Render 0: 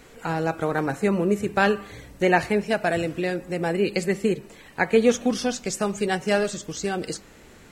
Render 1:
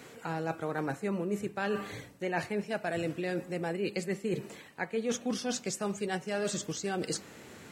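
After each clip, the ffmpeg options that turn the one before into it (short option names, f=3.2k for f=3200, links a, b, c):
-af "highpass=f=92:w=0.5412,highpass=f=92:w=1.3066,areverse,acompressor=threshold=-30dB:ratio=6,areverse"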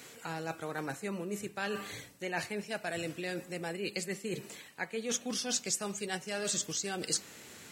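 -af "highshelf=f=2.2k:g=12,volume=-5.5dB"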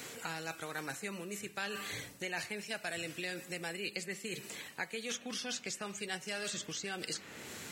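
-filter_complex "[0:a]acrossover=split=1500|3100[a][b][c];[a]acompressor=threshold=-48dB:ratio=4[d];[b]acompressor=threshold=-46dB:ratio=4[e];[c]acompressor=threshold=-50dB:ratio=4[f];[d][e][f]amix=inputs=3:normalize=0,volume=5dB"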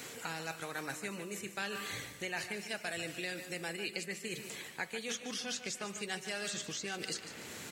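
-af "aecho=1:1:148|296|444|592|740:0.282|0.13|0.0596|0.0274|0.0126"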